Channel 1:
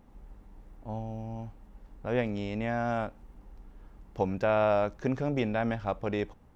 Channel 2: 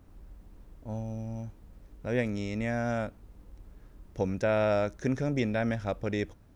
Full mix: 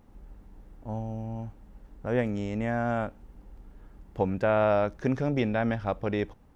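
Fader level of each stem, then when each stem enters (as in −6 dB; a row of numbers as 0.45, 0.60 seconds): −0.5, −7.5 decibels; 0.00, 0.00 seconds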